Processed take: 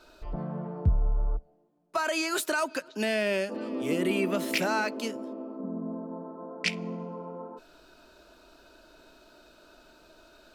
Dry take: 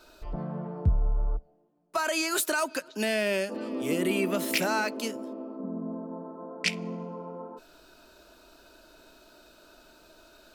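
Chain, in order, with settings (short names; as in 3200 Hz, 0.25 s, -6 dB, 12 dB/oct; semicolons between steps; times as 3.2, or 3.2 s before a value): high shelf 7900 Hz -9 dB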